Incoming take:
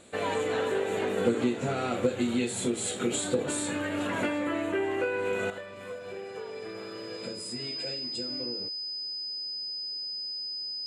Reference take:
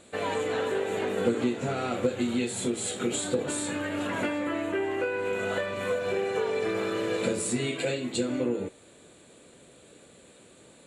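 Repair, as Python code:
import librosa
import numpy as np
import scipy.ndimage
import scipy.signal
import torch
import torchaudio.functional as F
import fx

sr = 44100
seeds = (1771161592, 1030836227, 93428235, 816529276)

y = fx.notch(x, sr, hz=5000.0, q=30.0)
y = fx.gain(y, sr, db=fx.steps((0.0, 0.0), (5.5, 11.0)))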